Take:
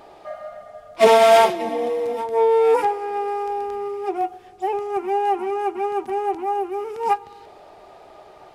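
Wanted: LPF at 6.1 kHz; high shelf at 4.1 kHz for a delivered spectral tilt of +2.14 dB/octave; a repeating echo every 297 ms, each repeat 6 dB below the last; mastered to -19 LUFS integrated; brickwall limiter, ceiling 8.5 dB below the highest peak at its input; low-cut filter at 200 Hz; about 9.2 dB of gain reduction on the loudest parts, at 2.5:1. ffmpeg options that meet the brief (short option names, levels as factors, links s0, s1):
-af "highpass=200,lowpass=6100,highshelf=f=4100:g=-6,acompressor=threshold=0.0708:ratio=2.5,alimiter=limit=0.112:level=0:latency=1,aecho=1:1:297|594|891|1188|1485|1782:0.501|0.251|0.125|0.0626|0.0313|0.0157,volume=2.51"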